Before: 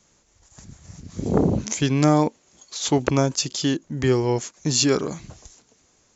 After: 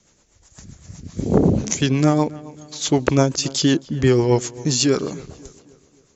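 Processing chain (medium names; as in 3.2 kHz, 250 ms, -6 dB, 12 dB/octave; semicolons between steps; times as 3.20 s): gain riding 0.5 s; rotary cabinet horn 8 Hz; filtered feedback delay 269 ms, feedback 47%, low-pass 2.9 kHz, level -19.5 dB; trim +5.5 dB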